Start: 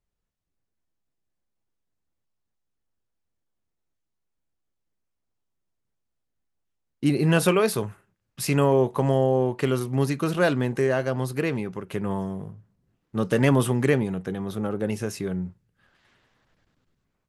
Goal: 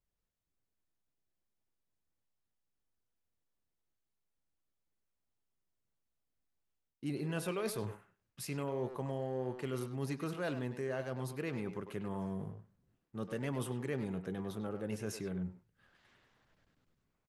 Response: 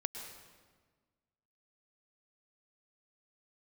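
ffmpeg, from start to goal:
-filter_complex "[0:a]areverse,acompressor=threshold=-31dB:ratio=4,areverse,asplit=2[a][b];[b]adelay=100,highpass=300,lowpass=3.4k,asoftclip=type=hard:threshold=-31dB,volume=-7dB[c];[a][c]amix=inputs=2:normalize=0,volume=-5.5dB"

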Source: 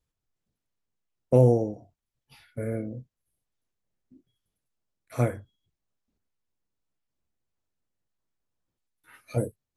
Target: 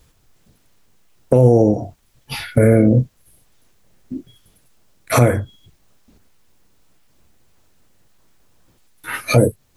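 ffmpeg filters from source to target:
-af "acompressor=threshold=-35dB:ratio=3,alimiter=level_in=29dB:limit=-1dB:release=50:level=0:latency=1,volume=-1.5dB"

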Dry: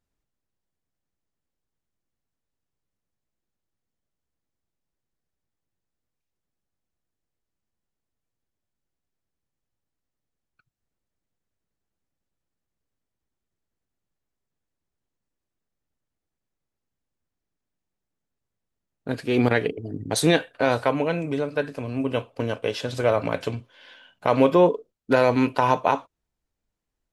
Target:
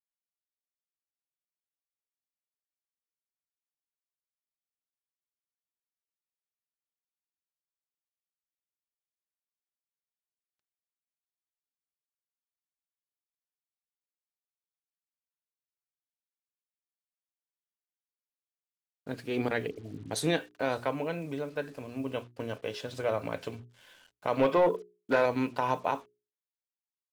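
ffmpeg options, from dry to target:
-filter_complex "[0:a]asettb=1/sr,asplit=3[a][b][c];[a]atrim=end=24.394[d];[b]atrim=start=24.39:end=25.26,asetpts=PTS-STARTPTS,afade=t=in:d=0.004:c=qsin,afade=t=out:st=0.866:d=0.004:c=qsin,asplit=2[e][f];[f]highpass=f=720:p=1,volume=15dB,asoftclip=type=tanh:threshold=-5.5dB[g];[e][g]amix=inputs=2:normalize=0,lowpass=f=2.6k:p=1,volume=-6dB[h];[c]atrim=start=25.256[i];[d][h]acrossfade=d=0.004:c1=hsin:c2=qsin[j];[j][i]acrossfade=d=0.004:c1=qsin:c2=hsin,acrusher=bits=7:mix=0:aa=0.5,bandreject=f=60:t=h:w=6,bandreject=f=120:t=h:w=6,bandreject=f=180:t=h:w=6,bandreject=f=240:t=h:w=6,bandreject=f=300:t=h:w=6,bandreject=f=360:t=h:w=6,bandreject=f=420:t=h:w=6,volume=-9dB"

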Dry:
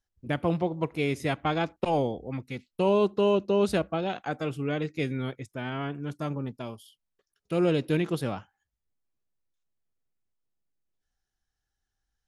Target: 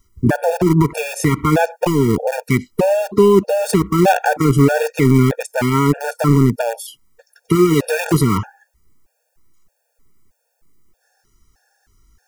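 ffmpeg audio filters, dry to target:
-filter_complex "[0:a]asplit=2[a][b];[b]acrusher=bits=4:mix=0:aa=0.000001,volume=-5.5dB[c];[a][c]amix=inputs=2:normalize=0,equalizer=f=3.4k:t=o:w=0.72:g=-10.5,acontrast=68,asettb=1/sr,asplit=3[d][e][f];[d]atrim=end=7.554[g];[e]atrim=start=7.55:end=8.14,asetpts=PTS-STARTPTS,afade=t=in:d=0.004:c=qsin,afade=t=out:st=0.586:d=0.004:c=qsin,lowshelf=f=490:g=-9[h];[f]atrim=start=8.136[i];[g][h]acrossfade=d=0.004:c1=hsin:c2=qsin[j];[j][i]acrossfade=d=0.004:c1=qsin:c2=hsin,acompressor=threshold=-21dB:ratio=6,alimiter=level_in=23.5dB:limit=-1dB:release=50:level=0:latency=1,afftfilt=real='re*gt(sin(2*PI*1.6*pts/sr)*(1-2*mod(floor(b*sr/1024/470),2)),0)':imag='im*gt(sin(2*PI*1.6*pts/sr)*(1-2*mod(floor(b*sr/1024/470),2)),0)':win_size=1024:overlap=0.75,volume=-1.5dB"

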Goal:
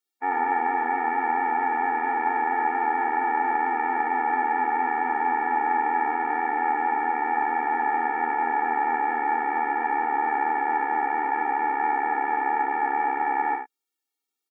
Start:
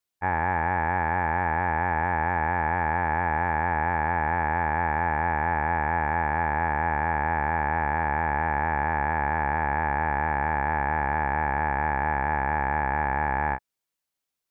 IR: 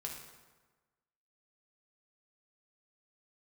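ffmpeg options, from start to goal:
-af "aecho=1:1:54|74:0.355|0.501,afftfilt=real='re*eq(mod(floor(b*sr/1024/240),2),1)':imag='im*eq(mod(floor(b*sr/1024/240),2),1)':win_size=1024:overlap=0.75,volume=1.5dB"

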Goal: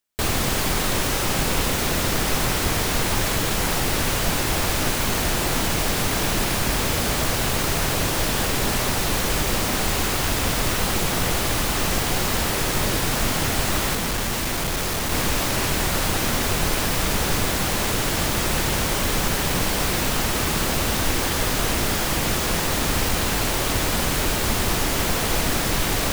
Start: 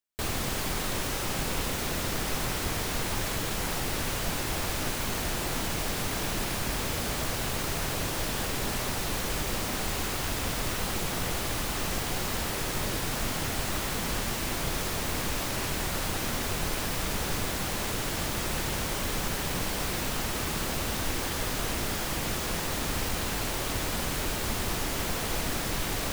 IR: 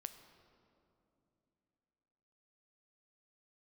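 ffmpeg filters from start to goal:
-filter_complex "[0:a]asettb=1/sr,asplit=3[a][b][c];[a]atrim=end=13.954[d];[b]atrim=start=13.95:end=15.12,asetpts=PTS-STARTPTS,afade=t=in:d=0.004:c=qsin,afade=t=out:st=1.166:d=0.004:c=qsin,asoftclip=type=hard:threshold=-29.5dB[e];[c]atrim=start=15.116[f];[d][e]acrossfade=d=0.004:c1=hsin:c2=qsin[g];[g][f]acrossfade=d=0.004:c1=qsin:c2=hsin,volume=8.5dB"

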